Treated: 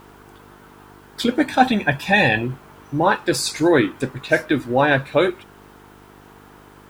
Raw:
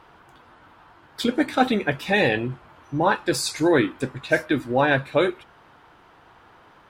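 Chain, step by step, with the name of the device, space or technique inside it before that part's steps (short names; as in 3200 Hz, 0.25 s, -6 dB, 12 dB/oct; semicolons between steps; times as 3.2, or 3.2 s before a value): 1.47–2.42 comb 1.2 ms, depth 57%; video cassette with head-switching buzz (buzz 50 Hz, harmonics 9, -52 dBFS 0 dB/oct; white noise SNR 39 dB); gain +3 dB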